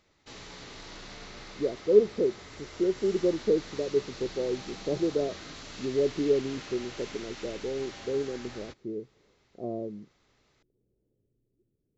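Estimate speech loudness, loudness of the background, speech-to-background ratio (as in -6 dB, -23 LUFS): -30.0 LUFS, -43.5 LUFS, 13.5 dB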